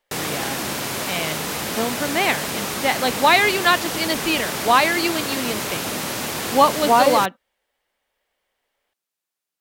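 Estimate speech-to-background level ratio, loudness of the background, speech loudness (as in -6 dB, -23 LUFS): 5.0 dB, -25.0 LUFS, -20.0 LUFS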